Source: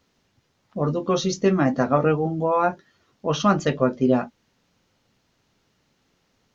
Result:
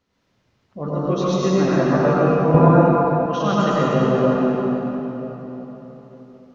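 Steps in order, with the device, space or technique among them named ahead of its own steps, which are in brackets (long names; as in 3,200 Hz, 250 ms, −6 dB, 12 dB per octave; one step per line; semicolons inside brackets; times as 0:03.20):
swimming-pool hall (convolution reverb RT60 4.0 s, pre-delay 82 ms, DRR −8.5 dB; high-shelf EQ 5,300 Hz −8 dB)
0:02.54–0:03.26: low-shelf EQ 360 Hz +10 dB
level −5.5 dB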